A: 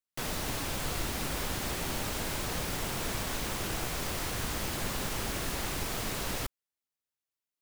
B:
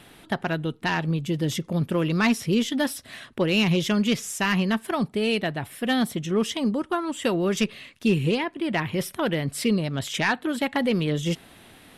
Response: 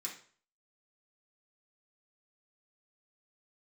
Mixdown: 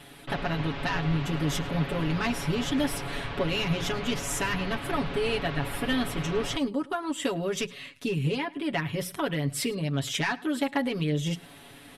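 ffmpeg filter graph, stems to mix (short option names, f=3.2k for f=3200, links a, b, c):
-filter_complex "[0:a]lowpass=f=3.4k:w=0.5412,lowpass=f=3.4k:w=1.3066,adelay=100,volume=-2dB,asplit=2[a][b];[b]volume=-16dB[c];[1:a]acompressor=threshold=-28dB:ratio=2.5,bandreject=f=60:t=h:w=6,bandreject=f=120:t=h:w=6,bandreject=f=180:t=h:w=6,volume=-1.5dB,asplit=2[d][e];[e]volume=-22dB[f];[c][f]amix=inputs=2:normalize=0,aecho=0:1:106:1[g];[a][d][g]amix=inputs=3:normalize=0,aecho=1:1:7.1:0.91"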